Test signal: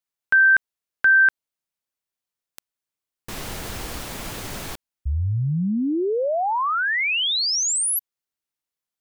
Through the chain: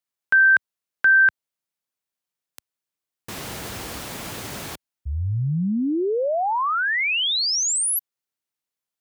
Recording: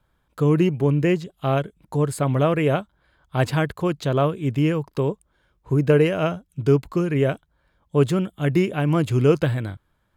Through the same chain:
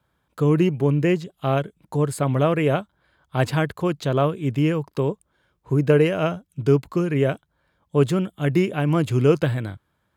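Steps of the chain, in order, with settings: HPF 77 Hz

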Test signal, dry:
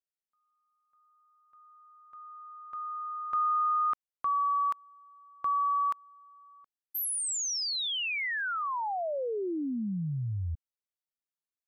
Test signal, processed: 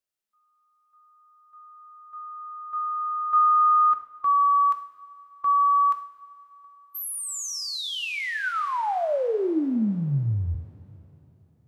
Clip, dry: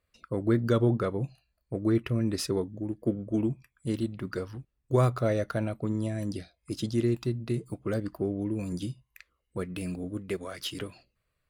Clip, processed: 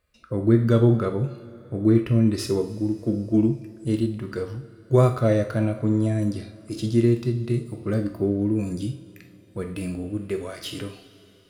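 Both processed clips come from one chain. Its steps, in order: two-slope reverb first 0.44 s, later 3.8 s, from -18 dB, DRR 8 dB; harmonic-percussive split percussive -9 dB; gain +7.5 dB

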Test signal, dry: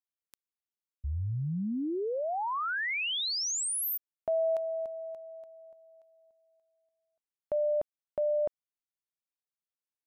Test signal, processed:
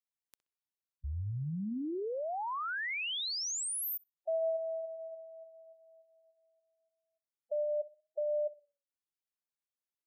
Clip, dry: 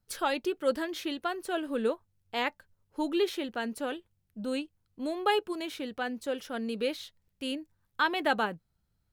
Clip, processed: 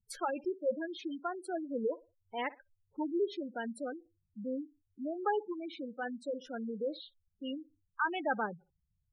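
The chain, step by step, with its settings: tape echo 61 ms, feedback 31%, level -18 dB, low-pass 5100 Hz; spectral gate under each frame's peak -10 dB strong; gain -4 dB

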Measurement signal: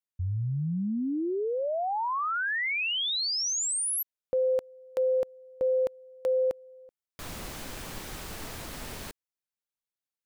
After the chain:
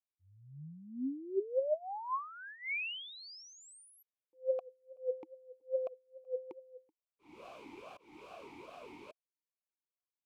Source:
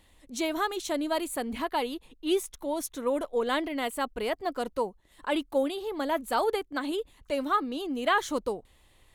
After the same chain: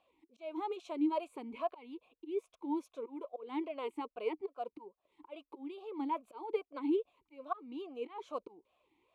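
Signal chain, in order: auto swell 0.27 s; vowel sweep a-u 2.4 Hz; gain +3 dB

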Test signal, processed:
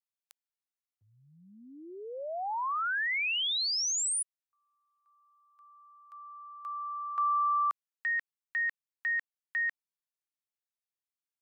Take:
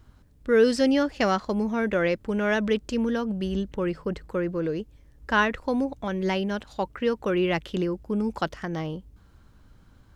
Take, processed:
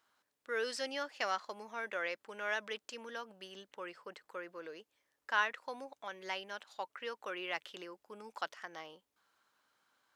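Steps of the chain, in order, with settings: HPF 830 Hz 12 dB/oct; gain -8 dB

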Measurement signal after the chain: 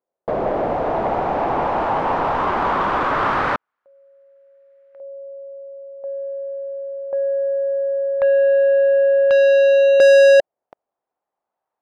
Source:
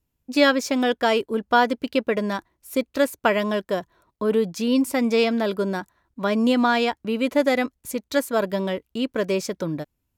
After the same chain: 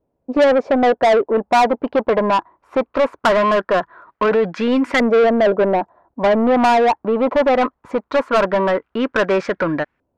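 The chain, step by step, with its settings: soft clip -14 dBFS; LFO low-pass saw up 0.2 Hz 570–1800 Hz; overdrive pedal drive 22 dB, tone 6300 Hz, clips at -6.5 dBFS

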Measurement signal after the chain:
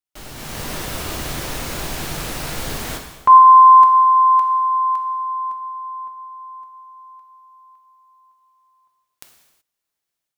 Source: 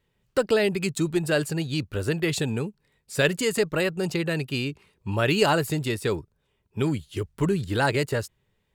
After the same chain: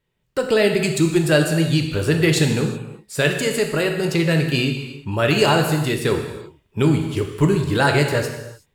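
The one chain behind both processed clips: AGC gain up to 10.5 dB; non-linear reverb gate 0.4 s falling, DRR 3 dB; gain -3 dB

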